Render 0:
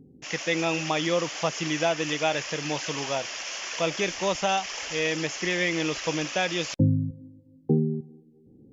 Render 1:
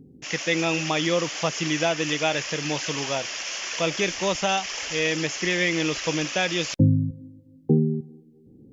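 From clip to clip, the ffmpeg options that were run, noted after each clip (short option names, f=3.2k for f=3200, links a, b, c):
-af "equalizer=f=800:w=0.92:g=-3.5,volume=3.5dB"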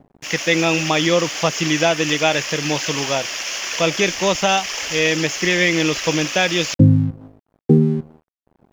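-af "aeval=exprs='sgn(val(0))*max(abs(val(0))-0.00447,0)':c=same,volume=7dB"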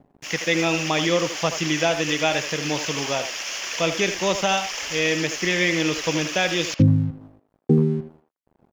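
-filter_complex "[0:a]asplit=2[a][b];[b]adelay=80,highpass=300,lowpass=3.4k,asoftclip=type=hard:threshold=-11dB,volume=-8dB[c];[a][c]amix=inputs=2:normalize=0,volume=-4.5dB"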